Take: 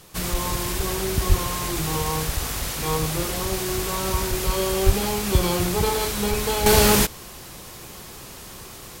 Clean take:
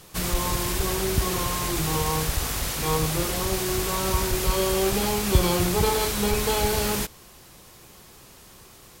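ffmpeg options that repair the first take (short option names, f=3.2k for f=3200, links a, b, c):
-filter_complex "[0:a]asplit=3[a][b][c];[a]afade=t=out:st=1.28:d=0.02[d];[b]highpass=f=140:w=0.5412,highpass=f=140:w=1.3066,afade=t=in:st=1.28:d=0.02,afade=t=out:st=1.4:d=0.02[e];[c]afade=t=in:st=1.4:d=0.02[f];[d][e][f]amix=inputs=3:normalize=0,asplit=3[g][h][i];[g]afade=t=out:st=4.85:d=0.02[j];[h]highpass=f=140:w=0.5412,highpass=f=140:w=1.3066,afade=t=in:st=4.85:d=0.02,afade=t=out:st=4.97:d=0.02[k];[i]afade=t=in:st=4.97:d=0.02[l];[j][k][l]amix=inputs=3:normalize=0,asetnsamples=n=441:p=0,asendcmd='6.66 volume volume -9dB',volume=0dB"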